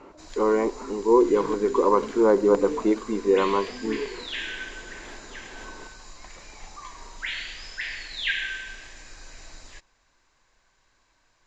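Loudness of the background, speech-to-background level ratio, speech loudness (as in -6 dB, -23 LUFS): -36.0 LUFS, 13.5 dB, -22.5 LUFS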